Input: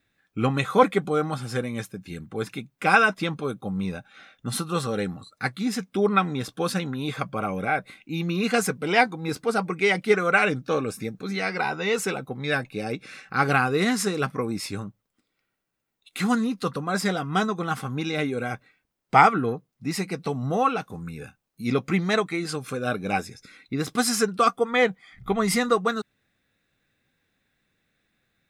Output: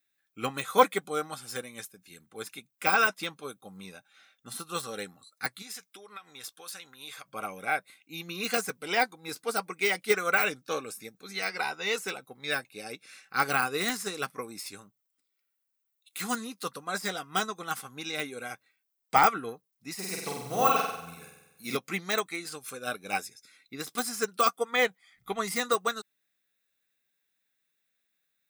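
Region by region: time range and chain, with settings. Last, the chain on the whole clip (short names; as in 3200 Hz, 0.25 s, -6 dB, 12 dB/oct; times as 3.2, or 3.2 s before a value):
5.62–7.28 bell 200 Hz -12.5 dB 2.4 oct + compressor 10:1, threshold -31 dBFS
19.94–21.77 block floating point 7-bit + flutter echo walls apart 8.1 m, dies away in 1.1 s
whole clip: de-esser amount 80%; RIAA curve recording; upward expander 1.5:1, over -40 dBFS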